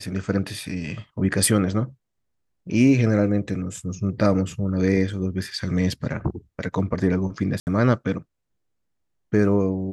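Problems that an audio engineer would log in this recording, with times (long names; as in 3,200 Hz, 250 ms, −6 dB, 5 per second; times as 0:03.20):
0:07.60–0:07.67: drop-out 69 ms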